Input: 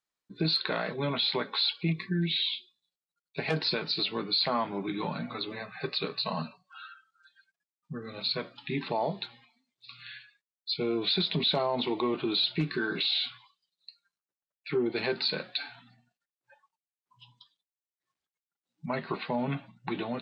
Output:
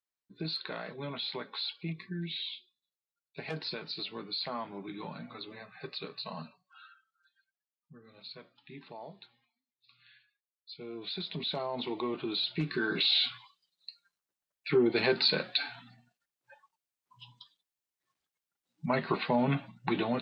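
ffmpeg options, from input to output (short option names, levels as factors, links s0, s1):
-af "volume=3.35,afade=t=out:st=6.83:d=1.12:silence=0.421697,afade=t=in:st=10.69:d=1.29:silence=0.281838,afade=t=in:st=12.49:d=0.78:silence=0.398107"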